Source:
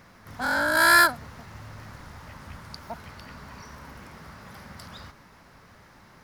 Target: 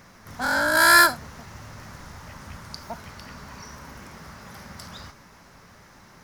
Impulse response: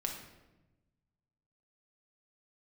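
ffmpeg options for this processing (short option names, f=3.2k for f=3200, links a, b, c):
-filter_complex "[0:a]asplit=2[a][b];[b]equalizer=f=6k:t=o:w=0.88:g=13.5[c];[1:a]atrim=start_sample=2205,atrim=end_sample=3969,highshelf=f=9.7k:g=9.5[d];[c][d]afir=irnorm=-1:irlink=0,volume=-11.5dB[e];[a][e]amix=inputs=2:normalize=0"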